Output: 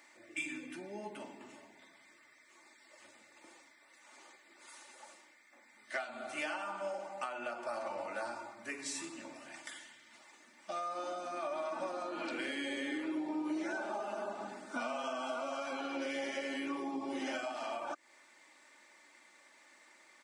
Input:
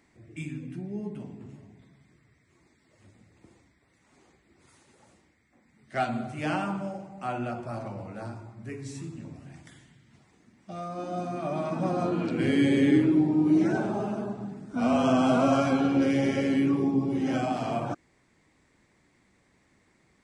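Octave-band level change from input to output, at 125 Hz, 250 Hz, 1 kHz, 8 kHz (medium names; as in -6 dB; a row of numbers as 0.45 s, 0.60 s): -31.5 dB, -17.0 dB, -8.0 dB, no reading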